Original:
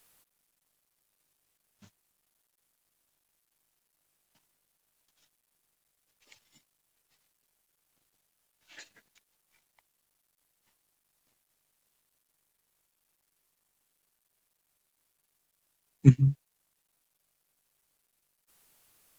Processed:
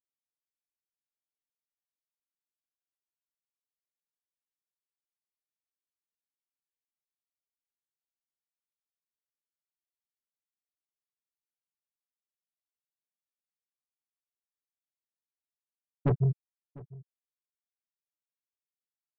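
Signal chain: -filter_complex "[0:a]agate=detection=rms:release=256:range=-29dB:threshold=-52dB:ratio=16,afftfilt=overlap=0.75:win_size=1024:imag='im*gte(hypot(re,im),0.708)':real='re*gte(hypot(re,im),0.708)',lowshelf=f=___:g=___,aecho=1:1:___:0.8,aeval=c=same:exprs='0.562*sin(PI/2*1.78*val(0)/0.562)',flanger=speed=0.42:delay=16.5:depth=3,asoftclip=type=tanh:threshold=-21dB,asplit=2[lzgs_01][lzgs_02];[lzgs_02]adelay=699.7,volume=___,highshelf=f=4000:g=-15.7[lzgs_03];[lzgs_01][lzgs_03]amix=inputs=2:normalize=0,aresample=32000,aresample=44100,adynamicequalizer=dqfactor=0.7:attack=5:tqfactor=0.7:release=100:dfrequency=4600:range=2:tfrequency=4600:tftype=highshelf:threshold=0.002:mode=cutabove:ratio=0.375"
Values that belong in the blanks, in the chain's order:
91, -5.5, 6.1, -21dB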